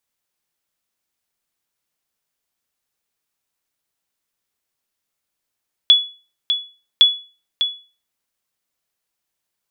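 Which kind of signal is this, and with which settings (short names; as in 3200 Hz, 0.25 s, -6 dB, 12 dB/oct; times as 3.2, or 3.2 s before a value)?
sonar ping 3400 Hz, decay 0.35 s, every 1.11 s, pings 2, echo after 0.60 s, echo -8.5 dB -3 dBFS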